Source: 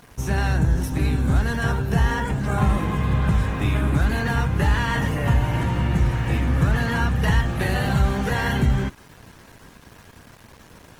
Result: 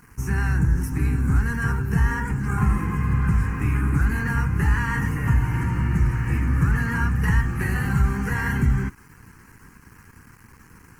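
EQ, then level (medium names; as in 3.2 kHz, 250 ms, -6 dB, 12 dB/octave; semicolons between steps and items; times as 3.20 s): static phaser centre 1.5 kHz, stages 4; 0.0 dB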